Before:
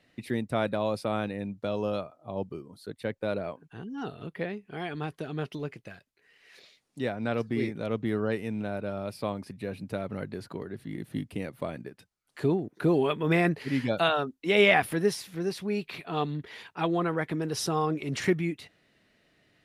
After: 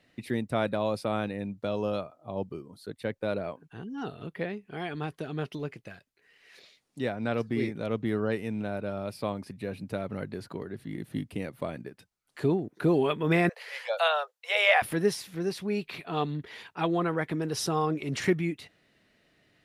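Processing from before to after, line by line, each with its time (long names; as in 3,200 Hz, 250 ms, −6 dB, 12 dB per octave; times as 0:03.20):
0:13.49–0:14.82: Butterworth high-pass 480 Hz 96 dB per octave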